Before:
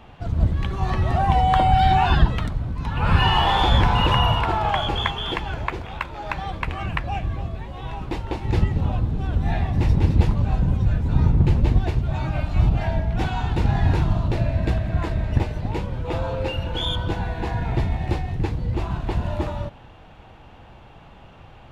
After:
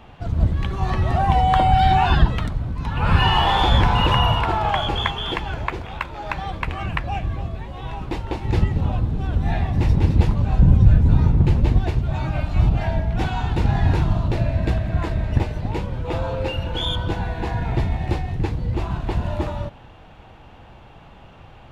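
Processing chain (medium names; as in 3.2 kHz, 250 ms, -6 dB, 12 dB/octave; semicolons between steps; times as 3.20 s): 10.59–11.15 s: bass shelf 370 Hz +7 dB; trim +1 dB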